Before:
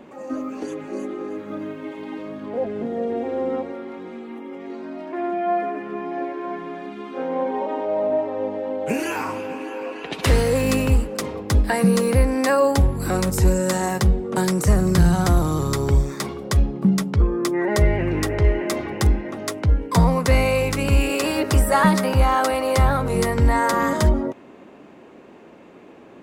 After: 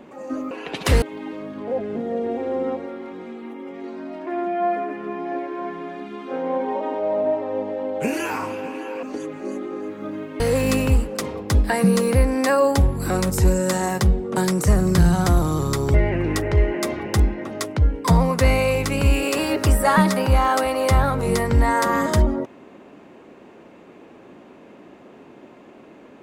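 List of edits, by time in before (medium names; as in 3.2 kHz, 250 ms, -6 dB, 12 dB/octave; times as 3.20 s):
0.51–1.88 s: swap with 9.89–10.40 s
15.94–17.81 s: delete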